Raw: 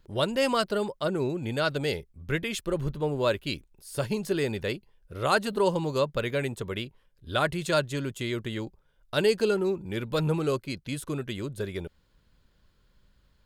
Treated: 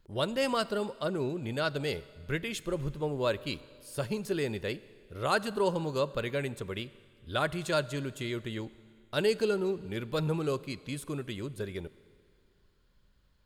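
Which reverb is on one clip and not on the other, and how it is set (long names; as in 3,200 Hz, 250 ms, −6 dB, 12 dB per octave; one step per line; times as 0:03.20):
four-comb reverb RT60 2.2 s, combs from 28 ms, DRR 18 dB
level −4 dB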